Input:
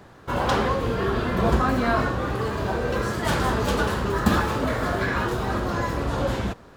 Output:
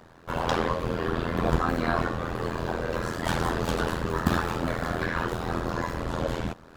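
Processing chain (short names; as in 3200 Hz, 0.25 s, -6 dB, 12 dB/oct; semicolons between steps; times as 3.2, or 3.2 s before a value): reverse; upward compressor, threshold -41 dBFS; reverse; AM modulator 83 Hz, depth 100%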